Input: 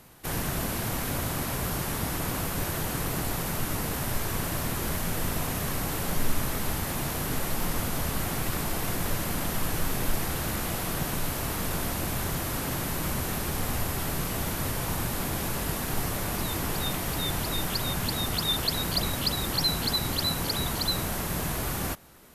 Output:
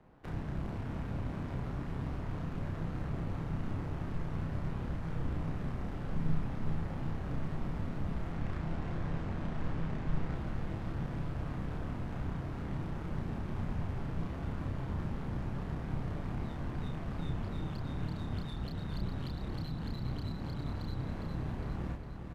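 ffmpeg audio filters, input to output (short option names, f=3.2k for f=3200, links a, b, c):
-filter_complex "[0:a]asettb=1/sr,asplit=3[a][b][c];[a]atrim=end=8.324[d];[b]atrim=start=8.32:end=10.34,asetpts=PTS-STARTPTS,afade=t=in:d=0.004:c=qsin,afade=t=out:st=2.016:d=0.004:c=qsin,equalizer=f=12k:w=0.79:g=-10.5[e];[c]atrim=start=10.336[f];[d][e]acrossfade=d=0.004:c1=hsin:c2=qsin[g];[g][f]acrossfade=d=0.004:c1=qsin:c2=hsin,acrossover=split=230[h][i];[i]acompressor=threshold=-38dB:ratio=6[j];[h][j]amix=inputs=2:normalize=0,tremolo=f=150:d=0.571,adynamicsmooth=sensitivity=6.5:basefreq=1.3k,asplit=2[k][l];[l]adelay=31,volume=-3dB[m];[k][m]amix=inputs=2:normalize=0,aecho=1:1:407|814|1221|1628|2035|2442:0.447|0.232|0.121|0.0628|0.0327|0.017,volume=-3.5dB"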